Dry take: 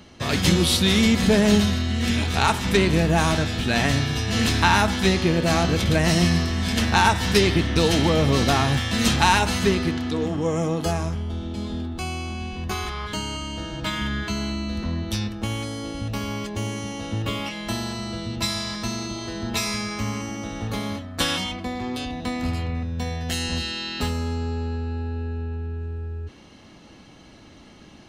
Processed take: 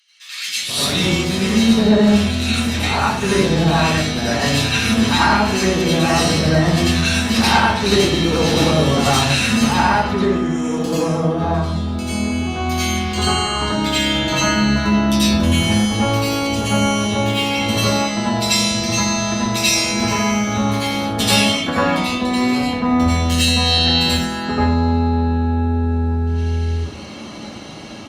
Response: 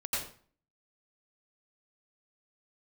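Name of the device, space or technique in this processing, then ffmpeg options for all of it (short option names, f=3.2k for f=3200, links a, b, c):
far-field microphone of a smart speaker: -filter_complex "[0:a]acrossover=split=1900[a][b];[a]adelay=480[c];[c][b]amix=inputs=2:normalize=0[d];[1:a]atrim=start_sample=2205[e];[d][e]afir=irnorm=-1:irlink=0,highpass=130,dynaudnorm=f=620:g=5:m=15.5dB,volume=-1.5dB" -ar 48000 -c:a libopus -b:a 48k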